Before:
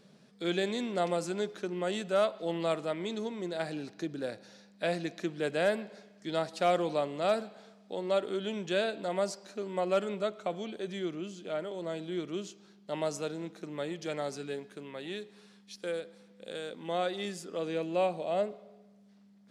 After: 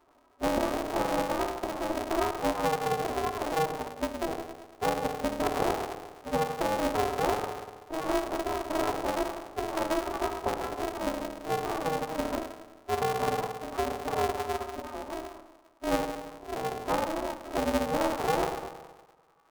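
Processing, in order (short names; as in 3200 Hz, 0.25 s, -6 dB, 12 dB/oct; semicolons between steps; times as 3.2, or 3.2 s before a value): switching spikes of -24.5 dBFS; notches 60/120/180/240/300/360/420/480/540/600 Hz; FFT band-pass 320–1200 Hz; spectral noise reduction 15 dB; compressor 8:1, threshold -34 dBFS, peak gain reduction 11.5 dB; formant-preserving pitch shift +4.5 st; on a send at -2 dB: reverb RT60 1.3 s, pre-delay 3 ms; on the sum: polarity switched at an audio rate 160 Hz; gain +8.5 dB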